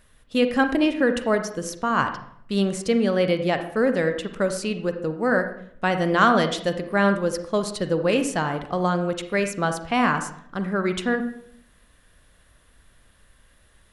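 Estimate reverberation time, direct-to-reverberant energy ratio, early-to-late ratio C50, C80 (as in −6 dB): 0.65 s, 7.5 dB, 9.0 dB, 12.5 dB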